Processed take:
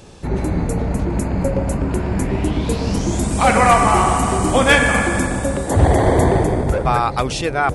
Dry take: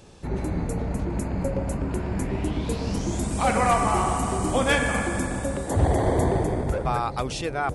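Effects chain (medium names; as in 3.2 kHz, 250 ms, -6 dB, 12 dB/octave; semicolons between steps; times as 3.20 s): dynamic bell 2 kHz, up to +3 dB, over -34 dBFS, Q 0.82; trim +7.5 dB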